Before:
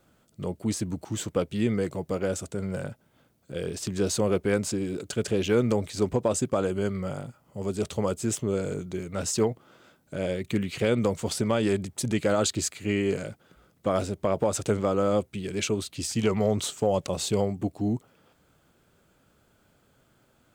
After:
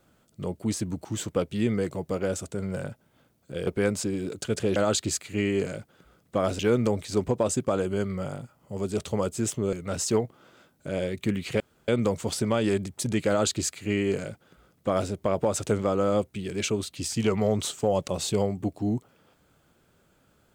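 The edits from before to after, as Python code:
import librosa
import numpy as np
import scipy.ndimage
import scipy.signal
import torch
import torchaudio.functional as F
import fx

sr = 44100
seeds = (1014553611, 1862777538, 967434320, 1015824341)

y = fx.edit(x, sr, fx.cut(start_s=3.67, length_s=0.68),
    fx.cut(start_s=8.58, length_s=0.42),
    fx.insert_room_tone(at_s=10.87, length_s=0.28),
    fx.duplicate(start_s=12.27, length_s=1.83, to_s=5.44), tone=tone)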